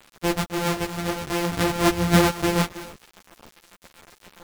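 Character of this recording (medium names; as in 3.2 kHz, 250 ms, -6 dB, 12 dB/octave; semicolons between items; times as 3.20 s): a buzz of ramps at a fixed pitch in blocks of 256 samples; tremolo triangle 7.6 Hz, depth 30%; a quantiser's noise floor 6-bit, dither none; a shimmering, thickened sound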